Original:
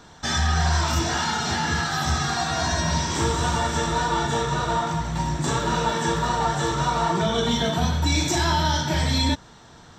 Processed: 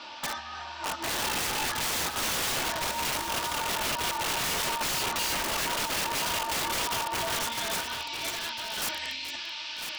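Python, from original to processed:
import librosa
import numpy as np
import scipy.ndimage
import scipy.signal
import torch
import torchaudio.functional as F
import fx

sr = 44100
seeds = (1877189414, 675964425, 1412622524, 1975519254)

y = fx.high_shelf(x, sr, hz=10000.0, db=5.0)
y = fx.hum_notches(y, sr, base_hz=60, count=4)
y = y + 0.97 * np.pad(y, (int(3.4 * sr / 1000.0), 0))[:len(y)]
y = fx.over_compress(y, sr, threshold_db=-24.0, ratio=-0.5)
y = fx.dmg_noise_band(y, sr, seeds[0], low_hz=2400.0, high_hz=5500.0, level_db=-35.0)
y = fx.filter_sweep_bandpass(y, sr, from_hz=970.0, to_hz=2200.0, start_s=7.11, end_s=8.03, q=1.1)
y = (np.mod(10.0 ** (25.0 / 20.0) * y + 1.0, 2.0) - 1.0) / 10.0 ** (25.0 / 20.0)
y = y + 10.0 ** (-8.5 / 20.0) * np.pad(y, (int(1003 * sr / 1000.0), 0))[:len(y)]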